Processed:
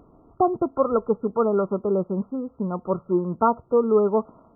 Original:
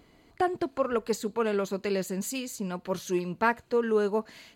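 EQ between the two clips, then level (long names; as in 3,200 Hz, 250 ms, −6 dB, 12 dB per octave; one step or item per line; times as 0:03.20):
linear-phase brick-wall low-pass 1,400 Hz
+6.5 dB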